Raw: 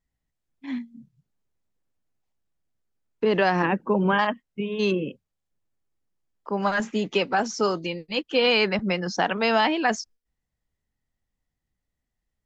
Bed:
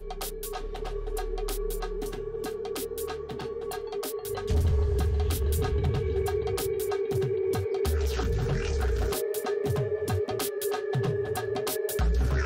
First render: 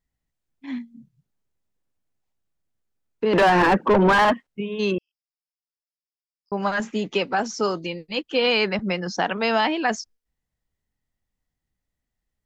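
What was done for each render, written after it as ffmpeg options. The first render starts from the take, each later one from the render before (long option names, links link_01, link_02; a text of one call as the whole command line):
ffmpeg -i in.wav -filter_complex "[0:a]asettb=1/sr,asplit=3[link_01][link_02][link_03];[link_01]atrim=end=3.334[link_04];[link_02]atrim=start=3.33:end=4.47,asetpts=PTS-STARTPTS,afade=type=in:duration=0.004:curve=qsin,afade=type=out:start_time=1.136:duration=0.004:curve=qsin,asplit=2[link_05][link_06];[link_06]highpass=frequency=720:poles=1,volume=26dB,asoftclip=type=tanh:threshold=-8dB[link_07];[link_05][link_07]amix=inputs=2:normalize=0,lowpass=frequency=1500:poles=1,volume=-6dB[link_08];[link_03]atrim=start=4.466[link_09];[link_04][link_08]acrossfade=duration=0.004:curve1=hsin:curve2=qsin[link_10];[link_10][link_09]acrossfade=duration=0.004:curve1=qsin:curve2=hsin,asettb=1/sr,asplit=3[link_11][link_12][link_13];[link_11]atrim=end=4.984[link_14];[link_12]atrim=start=4.98:end=6.52,asetpts=PTS-STARTPTS,afade=type=in:duration=0.004:curve=qsin,afade=type=out:start_time=1.536:duration=0.004:curve=qsin,asuperpass=centerf=5100:order=4:qfactor=6.6[link_15];[link_13]atrim=start=6.516[link_16];[link_14][link_15]acrossfade=duration=0.004:curve1=hsin:curve2=qsin[link_17];[link_17][link_16]acrossfade=duration=0.004:curve1=qsin:curve2=hsin" out.wav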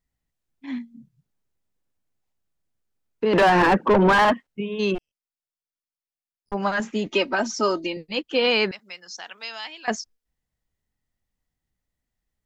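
ffmpeg -i in.wav -filter_complex "[0:a]asplit=3[link_01][link_02][link_03];[link_01]afade=type=out:start_time=4.94:duration=0.02[link_04];[link_02]aeval=exprs='max(val(0),0)':channel_layout=same,afade=type=in:start_time=4.94:duration=0.02,afade=type=out:start_time=6.53:duration=0.02[link_05];[link_03]afade=type=in:start_time=6.53:duration=0.02[link_06];[link_04][link_05][link_06]amix=inputs=3:normalize=0,asettb=1/sr,asplit=3[link_07][link_08][link_09];[link_07]atrim=end=7.064[link_10];[link_08]atrim=start=7.06:end=7.97,asetpts=PTS-STARTPTS,afade=type=in:duration=0.004:curve=qsin,afade=type=out:start_time=0.906:duration=0.004:curve=qsin,aecho=1:1:3.2:0.73,atrim=end_sample=40131[link_11];[link_09]atrim=start=7.966[link_12];[link_10][link_11]acrossfade=duration=0.004:curve1=hsin:curve2=qsin[link_13];[link_13][link_12]acrossfade=duration=0.004:curve1=qsin:curve2=hsin,asettb=1/sr,asplit=3[link_14][link_15][link_16];[link_14]atrim=end=8.714[link_17];[link_15]atrim=start=8.71:end=9.88,asetpts=PTS-STARTPTS,afade=type=in:duration=0.004:curve=qsin,afade=type=out:start_time=1.166:duration=0.004:curve=qsin,aderivative[link_18];[link_16]atrim=start=9.876[link_19];[link_17][link_18]acrossfade=duration=0.004:curve1=hsin:curve2=qsin[link_20];[link_20][link_19]acrossfade=duration=0.004:curve1=qsin:curve2=hsin" out.wav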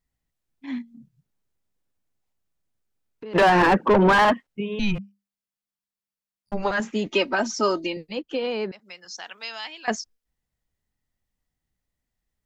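ffmpeg -i in.wav -filter_complex "[0:a]asplit=3[link_01][link_02][link_03];[link_01]afade=type=out:start_time=0.81:duration=0.02[link_04];[link_02]acompressor=threshold=-42dB:ratio=2.5:attack=3.2:release=140:knee=1:detection=peak,afade=type=in:start_time=0.81:duration=0.02,afade=type=out:start_time=3.34:duration=0.02[link_05];[link_03]afade=type=in:start_time=3.34:duration=0.02[link_06];[link_04][link_05][link_06]amix=inputs=3:normalize=0,asettb=1/sr,asplit=3[link_07][link_08][link_09];[link_07]atrim=end=4.794[link_10];[link_08]atrim=start=4.79:end=6.71,asetpts=PTS-STARTPTS,afade=type=in:duration=0.004:curve=qsin,afade=type=out:start_time=1.916:duration=0.004:curve=qsin,afreqshift=-200[link_11];[link_09]atrim=start=6.706[link_12];[link_10][link_11]acrossfade=duration=0.004:curve1=hsin:curve2=qsin[link_13];[link_13][link_12]acrossfade=duration=0.004:curve1=qsin:curve2=hsin,asettb=1/sr,asplit=3[link_14][link_15][link_16];[link_14]atrim=end=8.074[link_17];[link_15]atrim=start=8.07:end=9.05,asetpts=PTS-STARTPTS,afade=type=in:duration=0.004:curve=qsin,afade=type=out:start_time=0.976:duration=0.004:curve=qsin,acrossover=split=150|860[link_18][link_19][link_20];[link_18]acompressor=threshold=-52dB:ratio=4[link_21];[link_19]acompressor=threshold=-25dB:ratio=4[link_22];[link_20]acompressor=threshold=-38dB:ratio=4[link_23];[link_21][link_22][link_23]amix=inputs=3:normalize=0[link_24];[link_16]atrim=start=9.046[link_25];[link_17][link_24]acrossfade=duration=0.004:curve1=hsin:curve2=qsin[link_26];[link_26][link_25]acrossfade=duration=0.004:curve1=qsin:curve2=hsin" out.wav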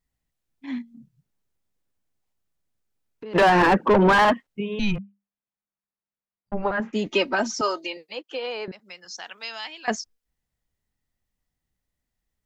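ffmpeg -i in.wav -filter_complex "[0:a]asettb=1/sr,asplit=3[link_01][link_02][link_03];[link_01]atrim=end=4.964[link_04];[link_02]atrim=start=4.96:end=6.93,asetpts=PTS-STARTPTS,afade=type=in:duration=0.004:curve=qsin,afade=type=out:start_time=1.966:duration=0.004:curve=qsin,lowpass=1800[link_05];[link_03]atrim=start=6.926[link_06];[link_04][link_05]acrossfade=duration=0.004:curve1=hsin:curve2=qsin[link_07];[link_07][link_06]acrossfade=duration=0.004:curve1=qsin:curve2=hsin,asettb=1/sr,asplit=3[link_08][link_09][link_10];[link_08]atrim=end=7.614[link_11];[link_09]atrim=start=7.61:end=8.68,asetpts=PTS-STARTPTS,afade=type=in:duration=0.004:curve=qsin,afade=type=out:start_time=1.066:duration=0.004:curve=qsin,highpass=540[link_12];[link_10]atrim=start=8.676[link_13];[link_11][link_12]acrossfade=duration=0.004:curve1=hsin:curve2=qsin[link_14];[link_14][link_13]acrossfade=duration=0.004:curve1=qsin:curve2=hsin" out.wav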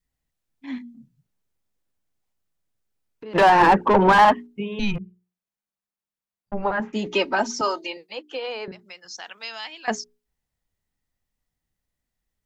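ffmpeg -i in.wav -af "bandreject=frequency=60:width_type=h:width=6,bandreject=frequency=120:width_type=h:width=6,bandreject=frequency=180:width_type=h:width=6,bandreject=frequency=240:width_type=h:width=6,bandreject=frequency=300:width_type=h:width=6,bandreject=frequency=360:width_type=h:width=6,bandreject=frequency=420:width_type=h:width=6,adynamicequalizer=threshold=0.0178:dfrequency=870:dqfactor=3.6:tfrequency=870:tqfactor=3.6:attack=5:release=100:ratio=0.375:range=3.5:mode=boostabove:tftype=bell" out.wav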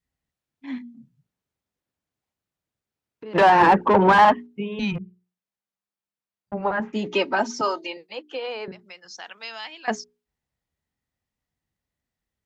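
ffmpeg -i in.wav -af "highpass=60,highshelf=frequency=6100:gain=-8" out.wav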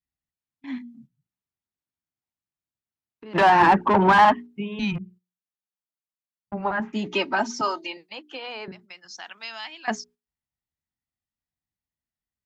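ffmpeg -i in.wav -af "agate=range=-10dB:threshold=-49dB:ratio=16:detection=peak,equalizer=frequency=490:width_type=o:width=0.44:gain=-10" out.wav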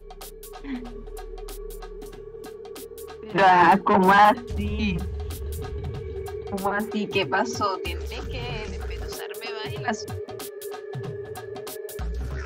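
ffmpeg -i in.wav -i bed.wav -filter_complex "[1:a]volume=-5.5dB[link_01];[0:a][link_01]amix=inputs=2:normalize=0" out.wav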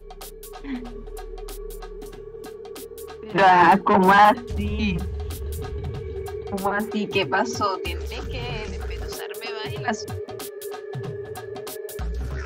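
ffmpeg -i in.wav -af "volume=1.5dB" out.wav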